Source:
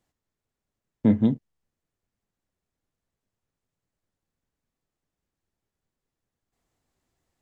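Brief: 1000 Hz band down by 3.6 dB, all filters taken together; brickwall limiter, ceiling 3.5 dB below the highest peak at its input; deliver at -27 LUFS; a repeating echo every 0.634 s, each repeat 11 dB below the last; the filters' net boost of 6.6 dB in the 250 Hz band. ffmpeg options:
-af "equalizer=f=250:t=o:g=8,equalizer=f=1k:t=o:g=-5.5,alimiter=limit=-7dB:level=0:latency=1,aecho=1:1:634|1268|1902:0.282|0.0789|0.0221,volume=-5.5dB"

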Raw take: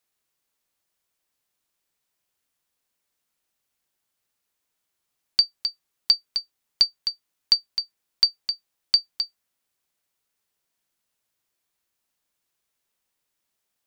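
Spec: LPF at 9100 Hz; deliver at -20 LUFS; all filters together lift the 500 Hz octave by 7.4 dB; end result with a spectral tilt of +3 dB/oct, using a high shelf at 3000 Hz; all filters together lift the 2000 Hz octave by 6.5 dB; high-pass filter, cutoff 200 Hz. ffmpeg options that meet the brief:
-af "highpass=200,lowpass=9.1k,equalizer=f=500:t=o:g=9,equalizer=f=2k:t=o:g=6.5,highshelf=f=3k:g=3,volume=0.5dB"

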